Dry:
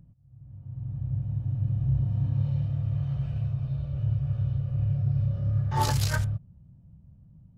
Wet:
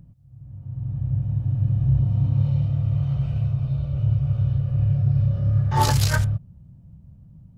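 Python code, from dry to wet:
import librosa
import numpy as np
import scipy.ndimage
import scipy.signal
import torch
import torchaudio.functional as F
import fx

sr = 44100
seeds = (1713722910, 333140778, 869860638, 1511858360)

y = fx.notch(x, sr, hz=1700.0, q=8.2, at=(1.99, 4.47))
y = F.gain(torch.from_numpy(y), 6.0).numpy()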